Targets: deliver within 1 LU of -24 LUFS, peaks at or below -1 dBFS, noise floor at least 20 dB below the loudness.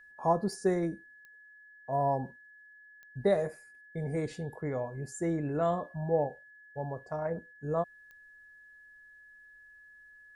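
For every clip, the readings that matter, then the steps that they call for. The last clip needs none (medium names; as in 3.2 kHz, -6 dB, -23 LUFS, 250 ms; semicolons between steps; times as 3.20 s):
clicks found 4; steady tone 1.7 kHz; tone level -53 dBFS; loudness -33.0 LUFS; peak level -16.0 dBFS; loudness target -24.0 LUFS
-> de-click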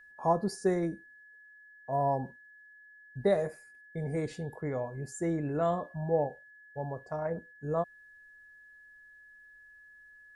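clicks found 0; steady tone 1.7 kHz; tone level -53 dBFS
-> band-stop 1.7 kHz, Q 30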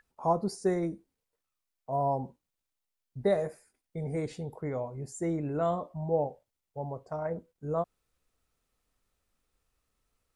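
steady tone not found; loudness -33.0 LUFS; peak level -16.0 dBFS; loudness target -24.0 LUFS
-> trim +9 dB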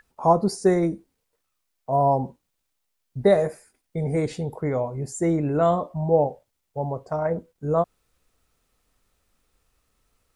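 loudness -24.0 LUFS; peak level -7.0 dBFS; noise floor -77 dBFS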